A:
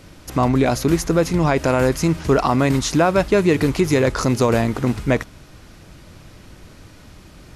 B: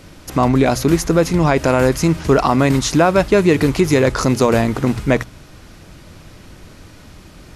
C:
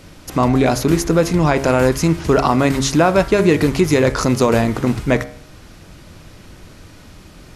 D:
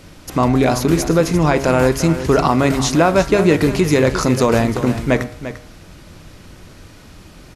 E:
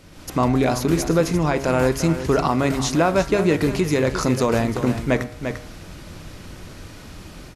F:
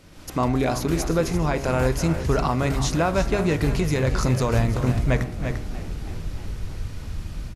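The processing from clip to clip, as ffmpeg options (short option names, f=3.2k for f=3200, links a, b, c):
-af "bandreject=f=60:t=h:w=6,bandreject=f=120:t=h:w=6,volume=3dB"
-af "bandreject=f=68.06:t=h:w=4,bandreject=f=136.12:t=h:w=4,bandreject=f=204.18:t=h:w=4,bandreject=f=272.24:t=h:w=4,bandreject=f=340.3:t=h:w=4,bandreject=f=408.36:t=h:w=4,bandreject=f=476.42:t=h:w=4,bandreject=f=544.48:t=h:w=4,bandreject=f=612.54:t=h:w=4,bandreject=f=680.6:t=h:w=4,bandreject=f=748.66:t=h:w=4,bandreject=f=816.72:t=h:w=4,bandreject=f=884.78:t=h:w=4,bandreject=f=952.84:t=h:w=4,bandreject=f=1.0209k:t=h:w=4,bandreject=f=1.08896k:t=h:w=4,bandreject=f=1.15702k:t=h:w=4,bandreject=f=1.22508k:t=h:w=4,bandreject=f=1.29314k:t=h:w=4,bandreject=f=1.3612k:t=h:w=4,bandreject=f=1.42926k:t=h:w=4,bandreject=f=1.49732k:t=h:w=4,bandreject=f=1.56538k:t=h:w=4,bandreject=f=1.63344k:t=h:w=4,bandreject=f=1.7015k:t=h:w=4,bandreject=f=1.76956k:t=h:w=4,bandreject=f=1.83762k:t=h:w=4,bandreject=f=1.90568k:t=h:w=4,bandreject=f=1.97374k:t=h:w=4,bandreject=f=2.0418k:t=h:w=4,bandreject=f=2.10986k:t=h:w=4,bandreject=f=2.17792k:t=h:w=4,bandreject=f=2.24598k:t=h:w=4,bandreject=f=2.31404k:t=h:w=4,bandreject=f=2.3821k:t=h:w=4"
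-af "aecho=1:1:346:0.251"
-af "dynaudnorm=f=110:g=3:m=8.5dB,volume=-6.5dB"
-filter_complex "[0:a]asubboost=boost=6:cutoff=110,asplit=7[a][b][c][d][e][f][g];[b]adelay=318,afreqshift=59,volume=-16.5dB[h];[c]adelay=636,afreqshift=118,volume=-20.7dB[i];[d]adelay=954,afreqshift=177,volume=-24.8dB[j];[e]adelay=1272,afreqshift=236,volume=-29dB[k];[f]adelay=1590,afreqshift=295,volume=-33.1dB[l];[g]adelay=1908,afreqshift=354,volume=-37.3dB[m];[a][h][i][j][k][l][m]amix=inputs=7:normalize=0,volume=-3dB"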